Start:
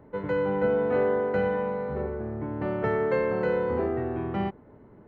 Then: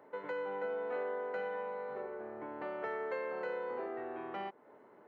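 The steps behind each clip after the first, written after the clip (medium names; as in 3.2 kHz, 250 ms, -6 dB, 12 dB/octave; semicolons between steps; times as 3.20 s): high-pass 530 Hz 12 dB/octave; compression 2:1, threshold -43 dBFS, peak gain reduction 10.5 dB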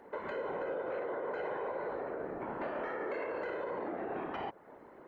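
whisper effect; peak limiter -34.5 dBFS, peak gain reduction 9 dB; trim +5 dB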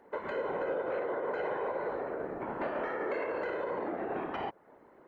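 upward expansion 1.5:1, over -52 dBFS; trim +4.5 dB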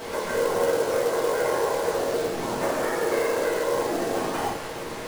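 one-bit delta coder 64 kbps, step -37 dBFS; reverberation RT60 0.50 s, pre-delay 4 ms, DRR -4.5 dB; short-mantissa float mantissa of 2-bit; trim +2.5 dB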